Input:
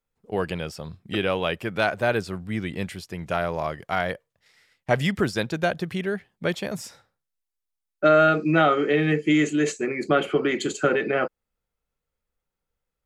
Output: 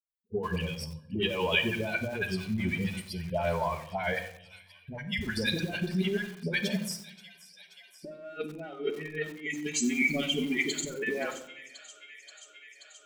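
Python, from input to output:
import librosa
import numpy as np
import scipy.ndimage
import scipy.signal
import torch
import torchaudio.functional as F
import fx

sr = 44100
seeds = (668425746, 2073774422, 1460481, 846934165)

p1 = fx.bin_expand(x, sr, power=2.0)
p2 = fx.dispersion(p1, sr, late='highs', ms=84.0, hz=820.0)
p3 = p2 + fx.echo_wet_highpass(p2, sr, ms=530, feedback_pct=81, hz=3600.0, wet_db=-17, dry=0)
p4 = fx.spec_box(p3, sr, start_s=9.5, length_s=1.05, low_hz=320.0, high_hz=1900.0, gain_db=-19)
p5 = fx.high_shelf(p4, sr, hz=4300.0, db=-6.0)
p6 = fx.notch(p5, sr, hz=2600.0, q=6.6)
p7 = np.clip(p6, -10.0 ** (-20.0 / 20.0), 10.0 ** (-20.0 / 20.0))
p8 = p6 + (p7 * 10.0 ** (-7.5 / 20.0))
p9 = scipy.signal.sosfilt(scipy.signal.butter(2, 48.0, 'highpass', fs=sr, output='sos'), p8)
p10 = fx.over_compress(p9, sr, threshold_db=-34.0, ratio=-1.0)
p11 = fx.graphic_eq_31(p10, sr, hz=(125, 1250, 2500), db=(-9, -11, 9))
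p12 = fx.room_shoebox(p11, sr, seeds[0], volume_m3=1900.0, walls='furnished', distance_m=1.4)
y = fx.echo_crushed(p12, sr, ms=91, feedback_pct=55, bits=6, wet_db=-14.0)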